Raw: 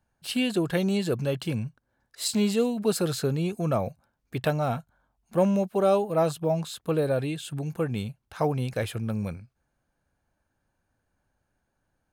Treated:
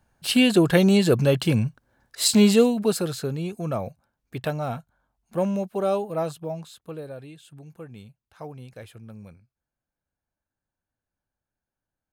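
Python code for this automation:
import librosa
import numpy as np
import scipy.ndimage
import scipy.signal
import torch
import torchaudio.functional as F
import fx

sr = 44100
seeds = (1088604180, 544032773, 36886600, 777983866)

y = fx.gain(x, sr, db=fx.line((2.56, 8.0), (3.14, -2.0), (6.07, -2.0), (7.18, -13.0)))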